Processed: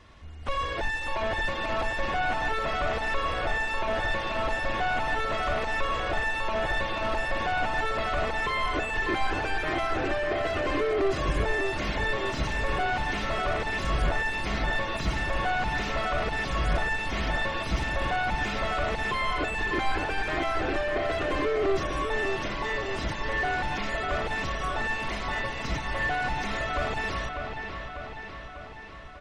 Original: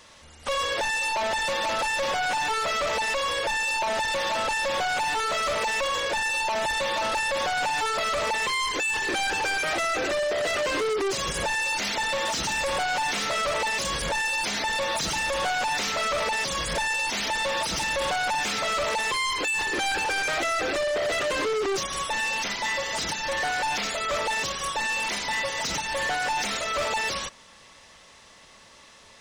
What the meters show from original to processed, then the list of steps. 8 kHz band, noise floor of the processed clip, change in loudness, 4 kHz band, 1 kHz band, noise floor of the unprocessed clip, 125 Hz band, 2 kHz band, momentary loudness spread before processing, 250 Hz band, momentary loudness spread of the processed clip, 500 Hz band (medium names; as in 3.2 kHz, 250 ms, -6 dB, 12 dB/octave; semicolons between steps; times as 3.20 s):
-16.0 dB, -39 dBFS, -3.0 dB, -8.0 dB, -2.5 dB, -52 dBFS, +9.5 dB, -2.5 dB, 2 LU, +4.0 dB, 4 LU, -1.5 dB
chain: tone controls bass +13 dB, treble -15 dB; comb 2.8 ms, depth 40%; feedback echo behind a low-pass 597 ms, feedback 62%, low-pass 3.6 kHz, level -6 dB; trim -3.5 dB